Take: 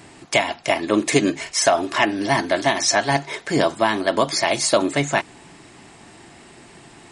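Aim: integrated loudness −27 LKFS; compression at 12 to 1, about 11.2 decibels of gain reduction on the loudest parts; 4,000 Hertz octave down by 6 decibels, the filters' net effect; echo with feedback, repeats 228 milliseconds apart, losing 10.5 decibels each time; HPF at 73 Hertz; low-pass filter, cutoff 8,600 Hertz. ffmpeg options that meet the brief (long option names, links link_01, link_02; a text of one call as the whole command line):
ffmpeg -i in.wav -af "highpass=73,lowpass=8600,equalizer=frequency=4000:width_type=o:gain=-8.5,acompressor=threshold=-24dB:ratio=12,aecho=1:1:228|456|684:0.299|0.0896|0.0269,volume=2dB" out.wav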